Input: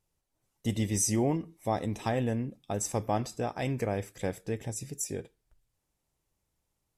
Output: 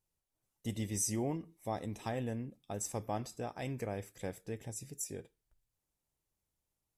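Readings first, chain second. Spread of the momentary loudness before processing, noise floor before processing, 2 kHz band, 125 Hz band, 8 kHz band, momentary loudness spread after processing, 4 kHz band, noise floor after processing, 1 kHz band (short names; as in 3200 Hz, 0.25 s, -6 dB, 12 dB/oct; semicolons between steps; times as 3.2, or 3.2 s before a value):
9 LU, -81 dBFS, -8.0 dB, -8.0 dB, -6.0 dB, 10 LU, -7.0 dB, under -85 dBFS, -8.0 dB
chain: high shelf 9700 Hz +6.5 dB; gain -8 dB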